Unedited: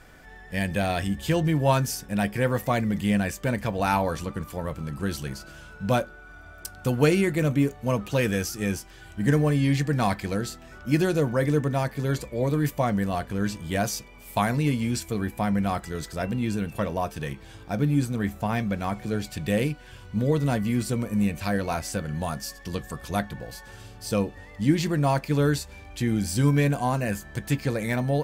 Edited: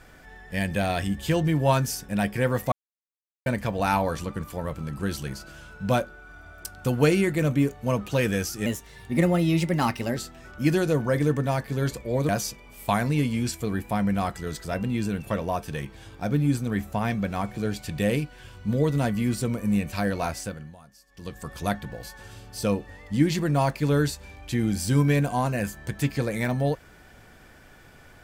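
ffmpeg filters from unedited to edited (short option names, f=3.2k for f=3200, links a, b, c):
-filter_complex "[0:a]asplit=8[a][b][c][d][e][f][g][h];[a]atrim=end=2.72,asetpts=PTS-STARTPTS,afade=t=out:st=2.716:d=0.004:c=hsin[i];[b]atrim=start=2.72:end=3.46,asetpts=PTS-STARTPTS,volume=0[j];[c]atrim=start=3.46:end=8.664,asetpts=PTS-STARTPTS,afade=t=in:d=0.004:c=hsin[k];[d]atrim=start=8.66:end=10.44,asetpts=PTS-STARTPTS,asetrate=52038,aresample=44100[l];[e]atrim=start=10.436:end=12.562[m];[f]atrim=start=13.768:end=22.24,asetpts=PTS-STARTPTS,afade=t=out:st=8.002:d=0.47:silence=0.0944061[n];[g]atrim=start=22.24:end=22.55,asetpts=PTS-STARTPTS,volume=-20.5dB[o];[h]atrim=start=22.55,asetpts=PTS-STARTPTS,afade=t=in:d=0.47:silence=0.0944061[p];[i][j][k]concat=n=3:v=0:a=1[q];[q][l]acrossfade=d=0.004:c1=hsin:c2=hsin[r];[r][m]acrossfade=d=0.004:c1=hsin:c2=hsin[s];[n][o][p]concat=n=3:v=0:a=1[t];[s][t]acrossfade=d=0.004:c1=hsin:c2=hsin"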